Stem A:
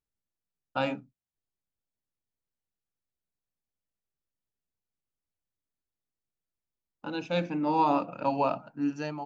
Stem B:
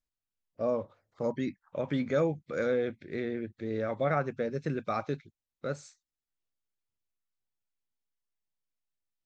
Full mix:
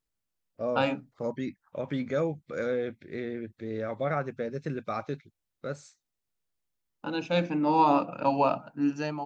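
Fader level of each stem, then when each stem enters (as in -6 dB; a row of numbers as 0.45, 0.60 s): +2.5, -1.0 dB; 0.00, 0.00 s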